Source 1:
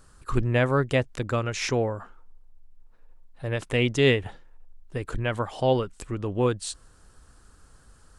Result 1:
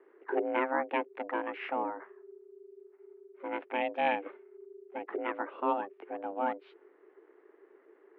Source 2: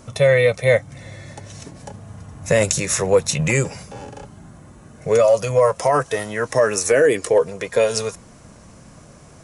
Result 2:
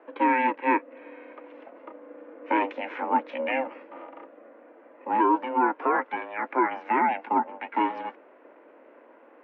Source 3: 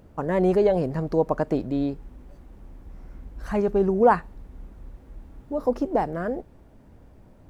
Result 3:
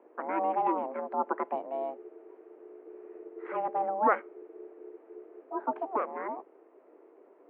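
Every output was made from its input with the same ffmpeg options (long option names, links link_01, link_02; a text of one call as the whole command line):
ffmpeg -i in.wav -af "aeval=exprs='val(0)*sin(2*PI*320*n/s)':channel_layout=same,highpass=frequency=220:width_type=q:width=0.5412,highpass=frequency=220:width_type=q:width=1.307,lowpass=frequency=2500:width_type=q:width=0.5176,lowpass=frequency=2500:width_type=q:width=0.7071,lowpass=frequency=2500:width_type=q:width=1.932,afreqshift=74,volume=-3.5dB" out.wav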